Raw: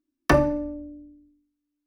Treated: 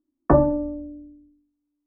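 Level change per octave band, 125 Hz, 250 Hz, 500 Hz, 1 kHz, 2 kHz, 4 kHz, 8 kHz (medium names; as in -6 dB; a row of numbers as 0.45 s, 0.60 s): +3.0 dB, +3.0 dB, +3.0 dB, +1.0 dB, -12.0 dB, under -35 dB, under -35 dB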